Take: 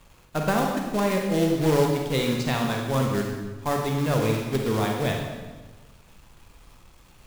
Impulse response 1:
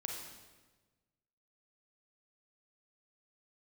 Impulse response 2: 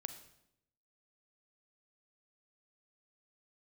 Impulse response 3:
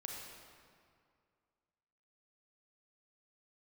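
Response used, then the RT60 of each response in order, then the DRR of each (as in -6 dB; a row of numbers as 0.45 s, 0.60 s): 1; 1.3 s, 0.80 s, 2.2 s; 0.5 dB, 9.0 dB, -1.0 dB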